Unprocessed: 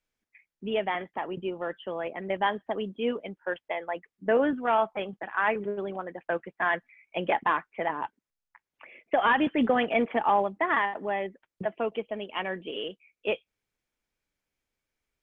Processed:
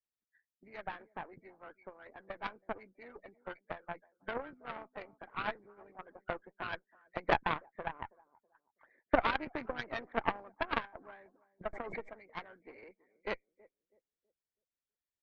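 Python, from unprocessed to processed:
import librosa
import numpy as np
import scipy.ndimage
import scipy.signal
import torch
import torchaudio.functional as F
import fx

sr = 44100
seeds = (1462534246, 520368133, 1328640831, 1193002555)

y = fx.freq_compress(x, sr, knee_hz=1200.0, ratio=1.5)
y = fx.echo_filtered(y, sr, ms=325, feedback_pct=34, hz=930.0, wet_db=-17.5)
y = fx.hpss(y, sr, part='harmonic', gain_db=-15)
y = fx.cheby_harmonics(y, sr, harmonics=(3, 4, 6), levels_db=(-11, -18, -32), full_scale_db=-13.5)
y = fx.pre_swell(y, sr, db_per_s=32.0, at=(11.73, 12.28))
y = F.gain(torch.from_numpy(y), 3.5).numpy()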